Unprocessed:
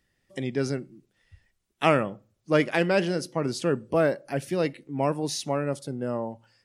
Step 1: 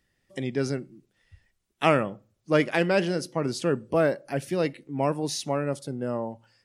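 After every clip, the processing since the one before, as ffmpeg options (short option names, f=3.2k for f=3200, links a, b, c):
-af anull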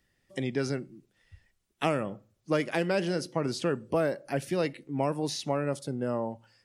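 -filter_complex "[0:a]acrossover=split=710|5000[a][b][c];[a]acompressor=threshold=-26dB:ratio=4[d];[b]acompressor=threshold=-32dB:ratio=4[e];[c]acompressor=threshold=-43dB:ratio=4[f];[d][e][f]amix=inputs=3:normalize=0"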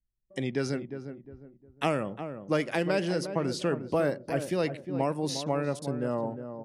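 -filter_complex "[0:a]anlmdn=0.00251,asplit=2[a][b];[b]adelay=356,lowpass=f=1k:p=1,volume=-8.5dB,asplit=2[c][d];[d]adelay=356,lowpass=f=1k:p=1,volume=0.35,asplit=2[e][f];[f]adelay=356,lowpass=f=1k:p=1,volume=0.35,asplit=2[g][h];[h]adelay=356,lowpass=f=1k:p=1,volume=0.35[i];[a][c][e][g][i]amix=inputs=5:normalize=0"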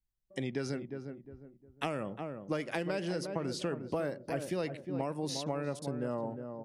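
-af "acompressor=threshold=-27dB:ratio=6,volume=-3dB"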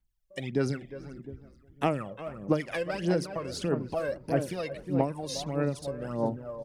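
-filter_complex "[0:a]aphaser=in_gain=1:out_gain=1:delay=1.9:decay=0.69:speed=1.6:type=sinusoidal,asplit=4[a][b][c][d];[b]adelay=433,afreqshift=-97,volume=-22dB[e];[c]adelay=866,afreqshift=-194,volume=-30.6dB[f];[d]adelay=1299,afreqshift=-291,volume=-39.3dB[g];[a][e][f][g]amix=inputs=4:normalize=0"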